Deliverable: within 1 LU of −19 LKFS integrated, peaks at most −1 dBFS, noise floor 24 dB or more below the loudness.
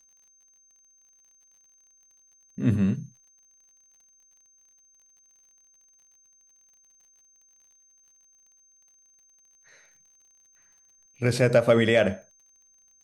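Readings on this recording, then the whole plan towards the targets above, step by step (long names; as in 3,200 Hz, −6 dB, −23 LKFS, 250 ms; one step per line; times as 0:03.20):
crackle rate 42 per second; interfering tone 6,300 Hz; level of the tone −58 dBFS; integrated loudness −23.5 LKFS; sample peak −7.5 dBFS; target loudness −19.0 LKFS
→ click removal
notch filter 6,300 Hz, Q 30
level +4.5 dB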